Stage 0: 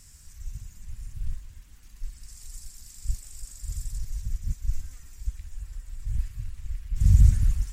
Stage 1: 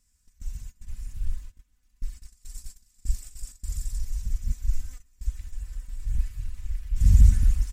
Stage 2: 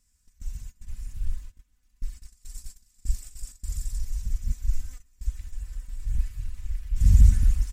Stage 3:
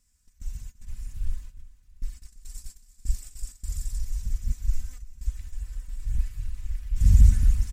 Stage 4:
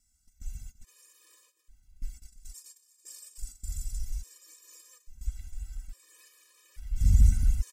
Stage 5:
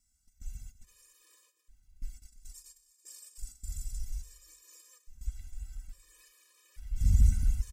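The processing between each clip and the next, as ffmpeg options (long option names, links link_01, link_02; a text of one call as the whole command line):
ffmpeg -i in.wav -af "agate=range=-19dB:threshold=-39dB:ratio=16:detection=peak,aecho=1:1:4:0.54" out.wav
ffmpeg -i in.wav -af anull out.wav
ffmpeg -i in.wav -af "aecho=1:1:337|674|1011:0.126|0.0491|0.0191" out.wav
ffmpeg -i in.wav -af "bass=frequency=250:gain=-3,treble=frequency=4000:gain=4,afftfilt=real='re*gt(sin(2*PI*0.59*pts/sr)*(1-2*mod(floor(b*sr/1024/320),2)),0)':imag='im*gt(sin(2*PI*0.59*pts/sr)*(1-2*mod(floor(b*sr/1024/320),2)),0)':win_size=1024:overlap=0.75,volume=-1.5dB" out.wav
ffmpeg -i in.wav -af "aecho=1:1:99|198|297|396:0.112|0.0516|0.0237|0.0109,volume=-3dB" out.wav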